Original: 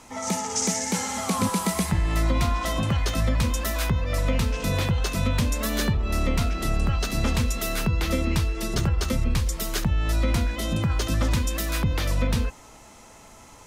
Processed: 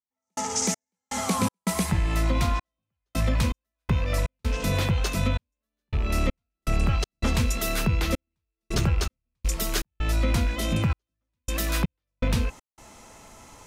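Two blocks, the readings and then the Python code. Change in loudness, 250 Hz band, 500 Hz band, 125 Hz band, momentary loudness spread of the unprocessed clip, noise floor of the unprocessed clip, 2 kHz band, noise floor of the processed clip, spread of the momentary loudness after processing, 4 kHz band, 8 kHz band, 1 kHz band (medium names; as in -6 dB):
-2.0 dB, -2.5 dB, -2.5 dB, -2.0 dB, 2 LU, -49 dBFS, -2.0 dB, under -85 dBFS, 8 LU, -2.5 dB, -2.5 dB, -2.5 dB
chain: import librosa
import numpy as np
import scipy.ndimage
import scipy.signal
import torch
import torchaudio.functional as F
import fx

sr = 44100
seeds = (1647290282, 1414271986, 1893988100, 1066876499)

y = fx.rattle_buzz(x, sr, strikes_db=-27.0, level_db=-29.0)
y = fx.rider(y, sr, range_db=10, speed_s=0.5)
y = fx.step_gate(y, sr, bpm=81, pattern='..xx..xx.xxxxx.', floor_db=-60.0, edge_ms=4.5)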